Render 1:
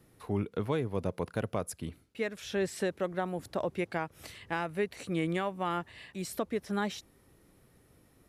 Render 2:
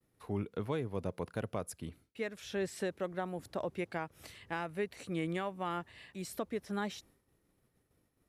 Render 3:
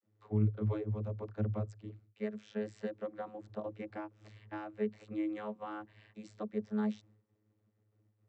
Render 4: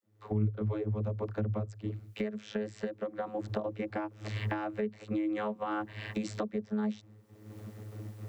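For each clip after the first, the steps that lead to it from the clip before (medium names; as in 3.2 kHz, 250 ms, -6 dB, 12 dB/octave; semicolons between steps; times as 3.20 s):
expander -55 dBFS; trim -4.5 dB
vocoder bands 32, saw 106 Hz; trim +2 dB
recorder AGC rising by 42 dB/s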